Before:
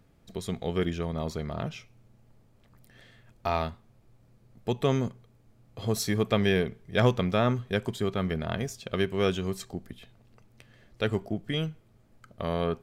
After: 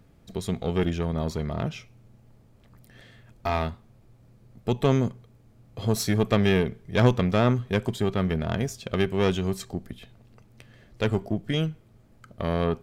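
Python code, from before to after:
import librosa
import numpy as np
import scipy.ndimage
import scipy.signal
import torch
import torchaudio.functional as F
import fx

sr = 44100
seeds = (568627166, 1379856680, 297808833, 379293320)

y = fx.diode_clip(x, sr, knee_db=-23.0)
y = fx.low_shelf(y, sr, hz=410.0, db=3.0)
y = y * 10.0 ** (3.0 / 20.0)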